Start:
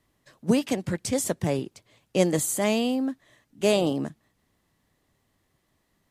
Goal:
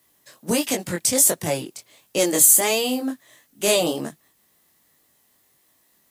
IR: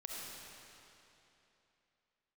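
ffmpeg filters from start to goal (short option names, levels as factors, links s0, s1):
-af "flanger=delay=19:depth=4.9:speed=1.4,apsyclip=9.44,aemphasis=mode=production:type=bsi,volume=0.251"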